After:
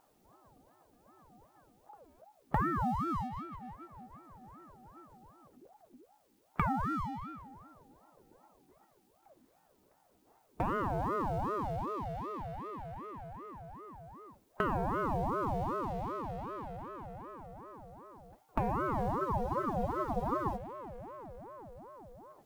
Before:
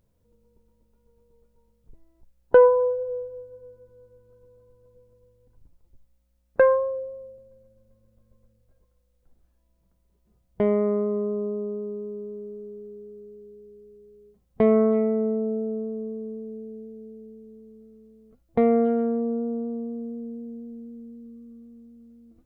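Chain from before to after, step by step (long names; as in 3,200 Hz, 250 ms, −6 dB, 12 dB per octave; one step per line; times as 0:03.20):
mu-law and A-law mismatch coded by mu
low-shelf EQ 250 Hz −10 dB
downward compressor 6 to 1, threshold −26 dBFS, peak gain reduction 13.5 dB
frozen spectrum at 0:19.20, 1.36 s
ring modulator whose carrier an LFO sweeps 550 Hz, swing 55%, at 2.6 Hz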